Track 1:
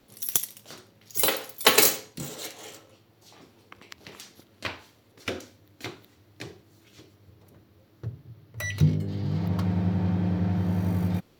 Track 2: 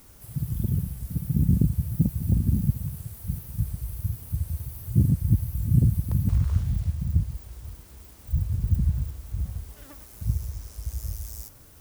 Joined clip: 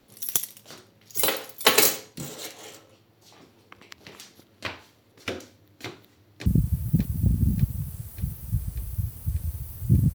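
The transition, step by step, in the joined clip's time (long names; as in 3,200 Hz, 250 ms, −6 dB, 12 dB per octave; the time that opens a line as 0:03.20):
track 1
0:06.13–0:06.46: delay throw 590 ms, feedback 70%, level −6.5 dB
0:06.46: continue with track 2 from 0:01.52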